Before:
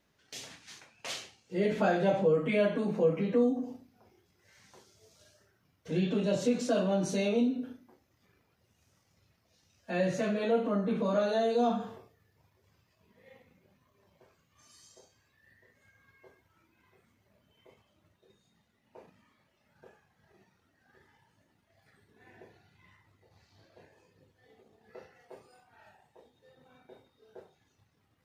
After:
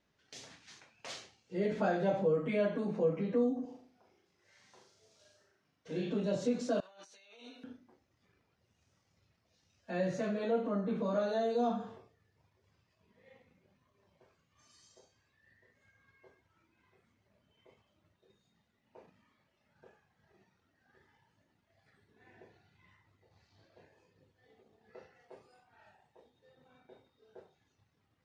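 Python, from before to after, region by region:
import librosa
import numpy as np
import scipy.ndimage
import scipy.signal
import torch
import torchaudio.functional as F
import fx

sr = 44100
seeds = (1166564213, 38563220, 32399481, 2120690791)

y = fx.chain(x, sr, fx.highpass(hz=260.0, slope=6),
    fx.room_flutter(wall_m=6.8, rt60_s=0.44), at=(3.65, 6.12))
y = fx.chain(y, sr, fx.highpass(hz=1300.0, slope=12),
    fx.over_compress(threshold_db=-53.0, ratio=-1.0), at=(6.8, 7.64))
y = scipy.signal.sosfilt(scipy.signal.butter(2, 6900.0, 'lowpass', fs=sr, output='sos'), y)
y = fx.dynamic_eq(y, sr, hz=2800.0, q=1.7, threshold_db=-54.0, ratio=4.0, max_db=-5)
y = y * 10.0 ** (-4.0 / 20.0)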